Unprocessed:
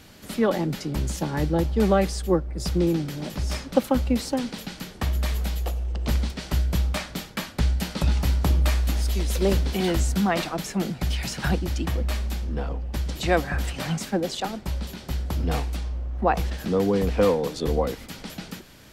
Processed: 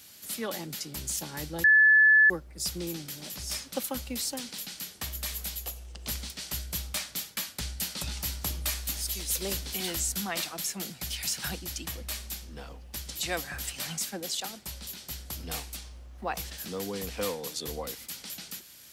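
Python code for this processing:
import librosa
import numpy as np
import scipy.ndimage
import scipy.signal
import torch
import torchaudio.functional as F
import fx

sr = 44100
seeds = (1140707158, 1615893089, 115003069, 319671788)

y = fx.edit(x, sr, fx.bleep(start_s=1.64, length_s=0.66, hz=1730.0, db=-8.5), tone=tone)
y = scipy.signal.sosfilt(scipy.signal.butter(2, 53.0, 'highpass', fs=sr, output='sos'), y)
y = F.preemphasis(torch.from_numpy(y), 0.9).numpy()
y = y * librosa.db_to_amplitude(5.0)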